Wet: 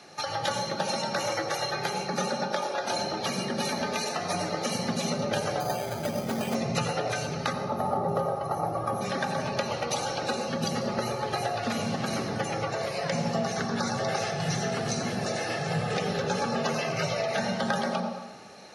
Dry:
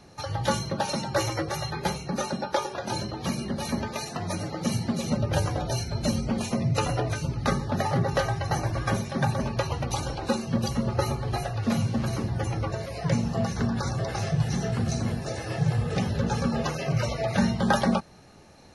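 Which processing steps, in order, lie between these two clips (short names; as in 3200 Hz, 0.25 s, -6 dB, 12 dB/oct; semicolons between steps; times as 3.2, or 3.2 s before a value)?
notch 1000 Hz, Q 7.2; 7.53–9.01 spectral gain 1400–10000 Hz -16 dB; weighting filter A; compressor 5:1, threshold -33 dBFS, peak gain reduction 12.5 dB; on a send at -4 dB: reverb RT60 1.0 s, pre-delay 76 ms; 5.6–6.55 on the sum: careless resampling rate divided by 8×, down filtered, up hold; gain +5.5 dB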